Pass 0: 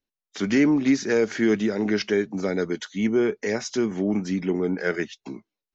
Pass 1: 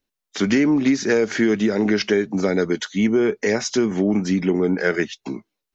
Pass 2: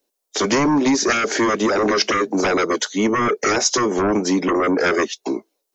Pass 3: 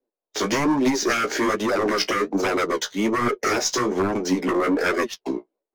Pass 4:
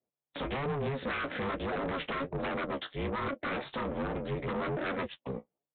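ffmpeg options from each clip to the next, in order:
ffmpeg -i in.wav -af "acompressor=threshold=-21dB:ratio=6,volume=7dB" out.wav
ffmpeg -i in.wav -filter_complex "[0:a]bass=frequency=250:gain=-14,treble=frequency=4000:gain=11,acrossover=split=300|690[link_01][link_02][link_03];[link_02]aeval=exprs='0.168*sin(PI/2*4.47*val(0)/0.168)':channel_layout=same[link_04];[link_01][link_04][link_03]amix=inputs=3:normalize=0" out.wav
ffmpeg -i in.wav -af "aeval=exprs='0.75*(cos(1*acos(clip(val(0)/0.75,-1,1)))-cos(1*PI/2))+0.0596*(cos(2*acos(clip(val(0)/0.75,-1,1)))-cos(2*PI/2))':channel_layout=same,adynamicsmooth=sensitivity=7.5:basefreq=1300,flanger=delay=7.9:depth=8.9:regen=29:speed=1.2:shape=sinusoidal" out.wav
ffmpeg -i in.wav -af "aeval=exprs='val(0)*sin(2*PI*140*n/s)':channel_layout=same,aresample=8000,asoftclip=type=tanh:threshold=-23.5dB,aresample=44100,volume=-5dB" out.wav

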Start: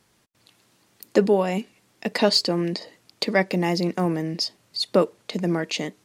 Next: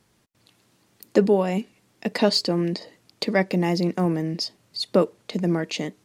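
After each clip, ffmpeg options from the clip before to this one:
ffmpeg -i in.wav -af "lowshelf=frequency=430:gain=5,volume=-2.5dB" out.wav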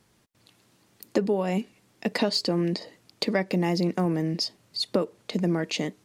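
ffmpeg -i in.wav -af "acompressor=threshold=-20dB:ratio=6" out.wav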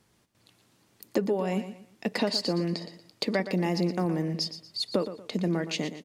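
ffmpeg -i in.wav -af "aecho=1:1:118|236|354:0.266|0.0825|0.0256,volume=-2.5dB" out.wav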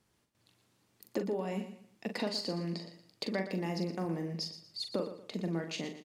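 ffmpeg -i in.wav -filter_complex "[0:a]asplit=2[link_01][link_02];[link_02]adelay=42,volume=-7dB[link_03];[link_01][link_03]amix=inputs=2:normalize=0,volume=-8dB" out.wav

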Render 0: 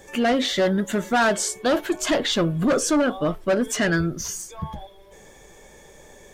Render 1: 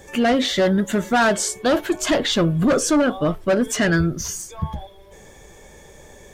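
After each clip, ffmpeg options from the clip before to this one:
ffmpeg -i in.wav -af "equalizer=frequency=76:width=0.7:gain=6,volume=2dB" out.wav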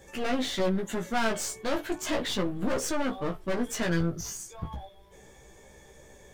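ffmpeg -i in.wav -af "aeval=exprs='clip(val(0),-1,0.0473)':channel_layout=same,flanger=delay=15:depth=3:speed=0.35,volume=-5dB" out.wav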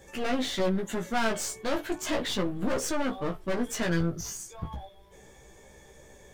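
ffmpeg -i in.wav -af anull out.wav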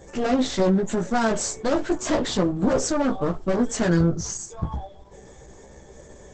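ffmpeg -i in.wav -af "equalizer=frequency=2700:width_type=o:width=1.5:gain=-9,volume=9dB" -ar 48000 -c:a libopus -b:a 12k out.opus

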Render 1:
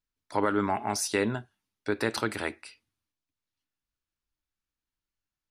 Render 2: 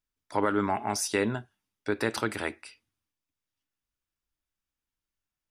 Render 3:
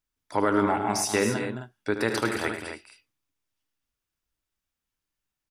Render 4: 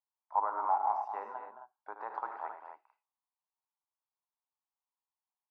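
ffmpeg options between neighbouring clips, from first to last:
ffmpeg -i in.wav -af "bandreject=frequency=4200:width=13" out.wav
ffmpeg -i in.wav -af "aecho=1:1:75.8|107.9|218.7|265.3:0.316|0.282|0.316|0.316,volume=2dB" out.wav
ffmpeg -i in.wav -af "asuperpass=centerf=900:order=4:qfactor=2.6" out.wav

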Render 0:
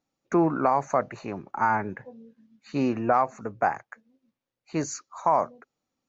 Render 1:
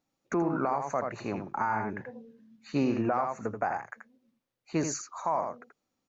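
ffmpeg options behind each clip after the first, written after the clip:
ffmpeg -i in.wav -filter_complex "[0:a]asplit=2[link_01][link_02];[link_02]aecho=0:1:82:0.447[link_03];[link_01][link_03]amix=inputs=2:normalize=0,alimiter=limit=-18.5dB:level=0:latency=1:release=218" out.wav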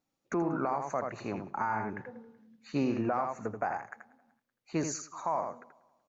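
ffmpeg -i in.wav -af "aecho=1:1:189|378|567:0.0631|0.0259|0.0106,volume=-2.5dB" out.wav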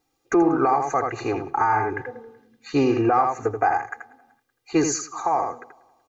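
ffmpeg -i in.wav -af "aecho=1:1:2.5:0.98,volume=8.5dB" out.wav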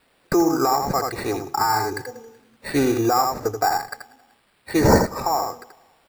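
ffmpeg -i in.wav -af "aexciter=amount=5.1:drive=5.8:freq=4100,acrusher=samples=7:mix=1:aa=0.000001" out.wav

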